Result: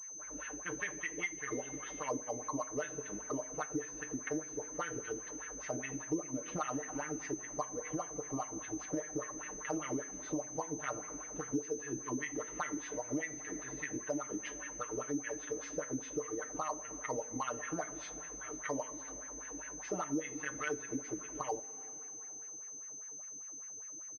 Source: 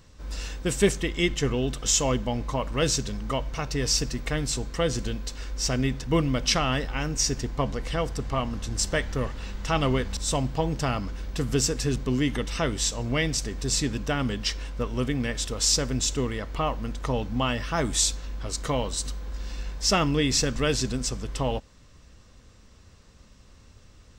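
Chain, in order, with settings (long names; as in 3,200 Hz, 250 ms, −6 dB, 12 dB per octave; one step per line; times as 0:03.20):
LFO wah 5 Hz 280–2,100 Hz, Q 5.8
comb filter 6.6 ms, depth 99%
convolution reverb, pre-delay 3 ms, DRR 9 dB
downward compressor 3 to 1, threshold −41 dBFS, peak gain reduction 15.5 dB
switching amplifier with a slow clock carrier 6,200 Hz
level +4 dB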